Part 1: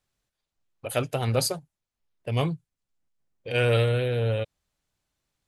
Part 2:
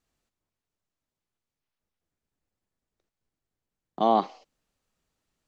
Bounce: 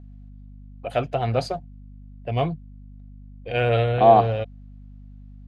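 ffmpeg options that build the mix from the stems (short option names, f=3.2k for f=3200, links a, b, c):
-filter_complex "[0:a]volume=0.5dB[a];[1:a]aeval=exprs='val(0)+0.00708*(sin(2*PI*50*n/s)+sin(2*PI*2*50*n/s)/2+sin(2*PI*3*50*n/s)/3+sin(2*PI*4*50*n/s)/4+sin(2*PI*5*50*n/s)/5)':c=same,volume=1.5dB[b];[a][b]amix=inputs=2:normalize=0,lowpass=3.3k,equalizer=f=700:w=7.5:g=13"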